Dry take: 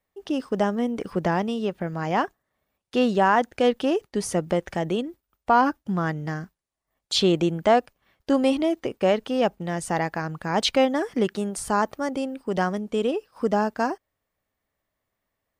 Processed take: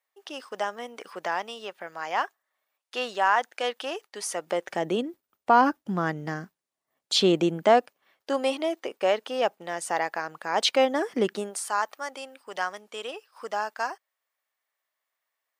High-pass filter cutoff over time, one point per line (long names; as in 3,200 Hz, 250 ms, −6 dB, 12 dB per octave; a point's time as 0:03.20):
0:04.32 830 Hz
0:04.99 200 Hz
0:07.55 200 Hz
0:08.31 520 Hz
0:10.52 520 Hz
0:11.33 220 Hz
0:11.63 940 Hz